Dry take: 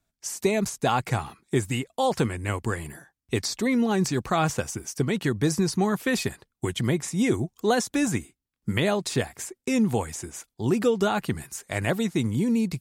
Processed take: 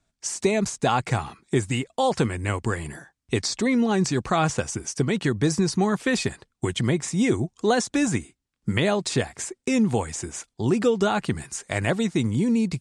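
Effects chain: steep low-pass 9.4 kHz 36 dB/octave; in parallel at -2.5 dB: compression, threshold -32 dBFS, peak gain reduction 14 dB

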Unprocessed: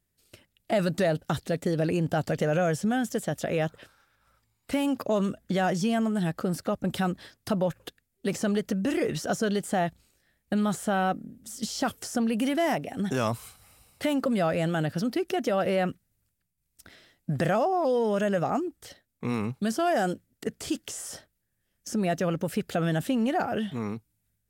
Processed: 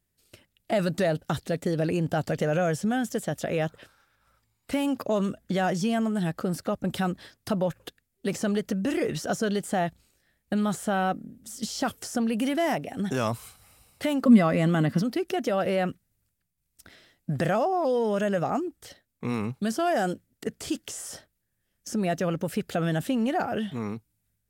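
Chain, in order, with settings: 14.25–15.01 s: small resonant body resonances 230/1100/2000 Hz, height 13 dB -> 15 dB

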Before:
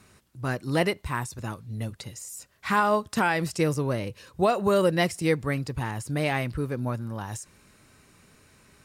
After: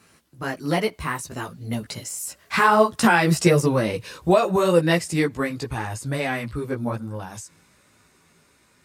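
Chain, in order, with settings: Doppler pass-by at 3.34 s, 19 m/s, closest 21 m; high-pass 140 Hz 6 dB/octave; in parallel at +3 dB: compression, threshold -33 dBFS, peak gain reduction 13 dB; on the sum: chorus voices 6, 1.2 Hz, delay 15 ms, depth 3.7 ms; trim +7.5 dB

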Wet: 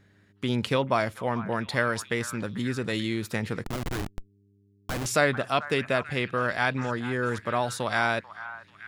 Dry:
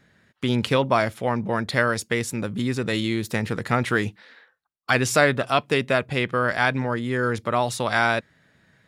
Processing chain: repeats whose band climbs or falls 440 ms, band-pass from 1.2 kHz, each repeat 0.7 oct, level -11 dB; 3.64–5.06 s: Schmitt trigger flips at -21.5 dBFS; mains buzz 100 Hz, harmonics 4, -58 dBFS -5 dB/octave; trim -4.5 dB

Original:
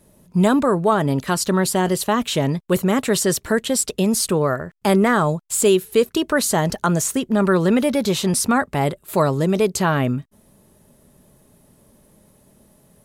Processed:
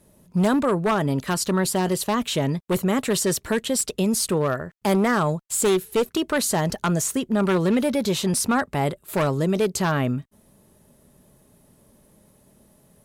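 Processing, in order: one-sided wavefolder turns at -12.5 dBFS; Chebyshev shaper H 5 -28 dB, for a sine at -5.5 dBFS; trim -4 dB

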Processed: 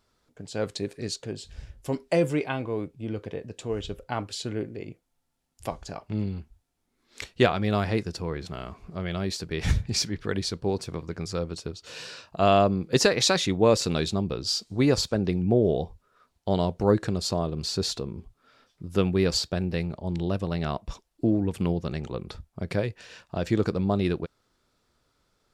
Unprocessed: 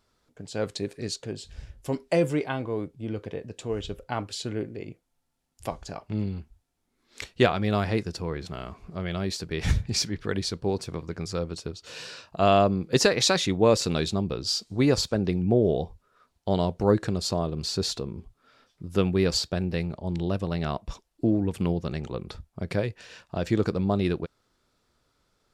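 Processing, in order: 2.34–3.04 s: peaking EQ 2.5 kHz +6.5 dB 0.21 oct

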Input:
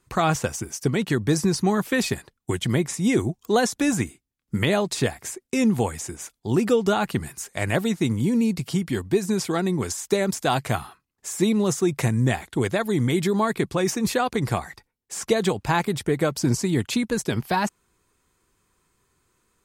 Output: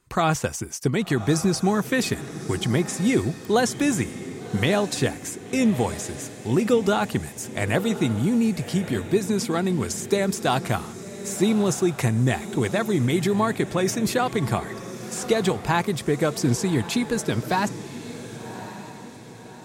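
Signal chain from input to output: echo that smears into a reverb 1123 ms, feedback 46%, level -12.5 dB

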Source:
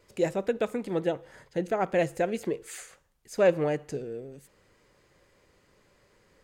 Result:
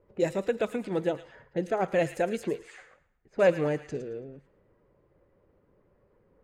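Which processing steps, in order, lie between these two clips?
coarse spectral quantiser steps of 15 dB; feedback echo behind a high-pass 110 ms, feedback 45%, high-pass 1.6 kHz, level -10 dB; level-controlled noise filter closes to 910 Hz, open at -26.5 dBFS

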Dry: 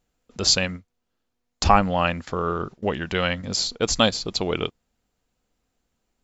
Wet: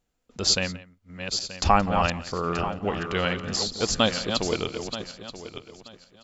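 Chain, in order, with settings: backward echo that repeats 465 ms, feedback 46%, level -7 dB; on a send: delay 174 ms -19 dB; on the sum: trim -3 dB

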